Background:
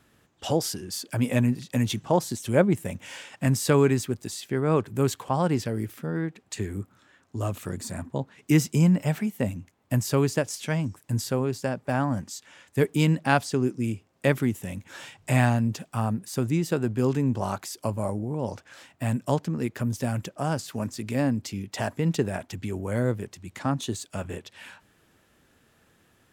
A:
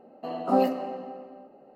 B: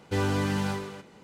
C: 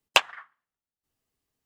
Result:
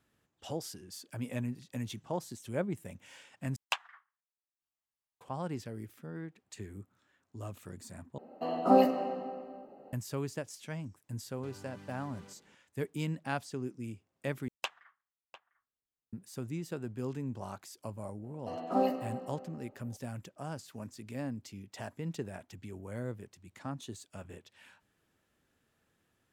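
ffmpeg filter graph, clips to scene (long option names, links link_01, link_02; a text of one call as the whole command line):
ffmpeg -i bed.wav -i cue0.wav -i cue1.wav -i cue2.wav -filter_complex "[3:a]asplit=2[link_01][link_02];[1:a]asplit=2[link_03][link_04];[0:a]volume=-13.5dB[link_05];[link_01]lowshelf=frequency=620:width_type=q:width=1.5:gain=-8[link_06];[2:a]acompressor=threshold=-35dB:ratio=6:attack=3.2:release=140:knee=1:detection=peak[link_07];[link_02]asplit=2[link_08][link_09];[link_09]adelay=699.7,volume=-14dB,highshelf=frequency=4000:gain=-15.7[link_10];[link_08][link_10]amix=inputs=2:normalize=0[link_11];[link_05]asplit=4[link_12][link_13][link_14][link_15];[link_12]atrim=end=3.564[link_16];[link_06]atrim=end=1.65,asetpts=PTS-STARTPTS,volume=-14dB[link_17];[link_13]atrim=start=5.206:end=8.184[link_18];[link_03]atrim=end=1.75,asetpts=PTS-STARTPTS,volume=-0.5dB[link_19];[link_14]atrim=start=9.926:end=14.484[link_20];[link_11]atrim=end=1.65,asetpts=PTS-STARTPTS,volume=-17.5dB[link_21];[link_15]atrim=start=16.126[link_22];[link_07]atrim=end=1.23,asetpts=PTS-STARTPTS,volume=-13.5dB,afade=type=in:duration=0.004:curve=hsin,afade=type=out:start_time=1.226:duration=0.004:curve=hsin,adelay=11320[link_23];[link_04]atrim=end=1.75,asetpts=PTS-STARTPTS,volume=-6.5dB,afade=type=in:duration=0.02,afade=type=out:start_time=1.73:duration=0.02,adelay=18230[link_24];[link_16][link_17]acrossfade=duration=0.004:curve1=hsin:curve2=hsin[link_25];[link_25][link_18]acrossfade=duration=0.004:curve1=hsin:curve2=hsin[link_26];[link_26][link_19]acrossfade=duration=0.004:curve1=hsin:curve2=hsin[link_27];[link_27][link_20]acrossfade=duration=0.004:curve1=hsin:curve2=hsin[link_28];[link_28][link_21]acrossfade=duration=0.004:curve1=hsin:curve2=hsin[link_29];[link_29][link_22]acrossfade=duration=0.004:curve1=hsin:curve2=hsin[link_30];[link_30][link_23][link_24]amix=inputs=3:normalize=0" out.wav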